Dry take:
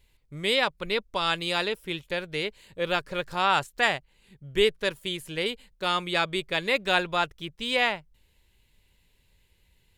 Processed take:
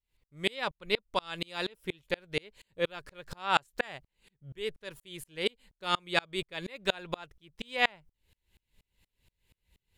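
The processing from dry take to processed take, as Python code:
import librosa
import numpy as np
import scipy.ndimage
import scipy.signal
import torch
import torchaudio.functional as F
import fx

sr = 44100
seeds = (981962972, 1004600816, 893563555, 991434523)

y = fx.tremolo_decay(x, sr, direction='swelling', hz=4.2, depth_db=34)
y = y * 10.0 ** (2.5 / 20.0)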